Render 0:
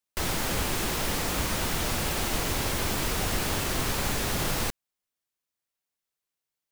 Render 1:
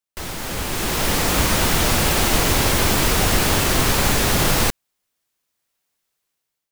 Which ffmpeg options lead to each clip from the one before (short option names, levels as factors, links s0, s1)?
-af "dynaudnorm=f=350:g=5:m=5.01,volume=0.841"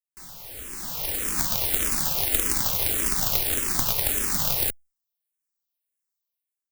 -filter_complex "[0:a]aeval=exprs='0.668*(cos(1*acos(clip(val(0)/0.668,-1,1)))-cos(1*PI/2))+0.188*(cos(3*acos(clip(val(0)/0.668,-1,1)))-cos(3*PI/2))':c=same,aemphasis=mode=production:type=50kf,asplit=2[s0][s1];[s1]afreqshift=-1.7[s2];[s0][s2]amix=inputs=2:normalize=1,volume=0.891"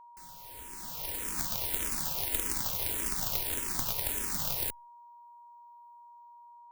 -af "aeval=exprs='val(0)+0.00794*sin(2*PI*950*n/s)':c=same,volume=0.376"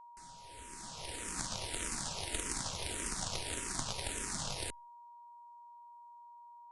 -af "aresample=22050,aresample=44100,volume=0.841"